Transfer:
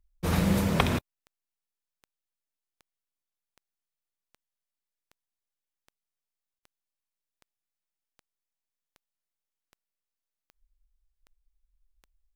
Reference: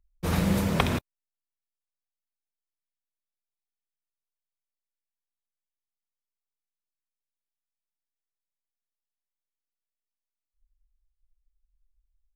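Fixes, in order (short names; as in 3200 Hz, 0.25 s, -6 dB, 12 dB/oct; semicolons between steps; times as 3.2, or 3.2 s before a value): de-click; interpolate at 6.59, 37 ms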